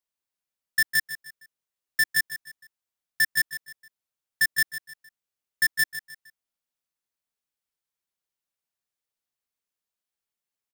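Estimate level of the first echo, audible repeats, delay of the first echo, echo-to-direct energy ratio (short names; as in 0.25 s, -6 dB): -12.0 dB, 3, 0.154 s, -11.5 dB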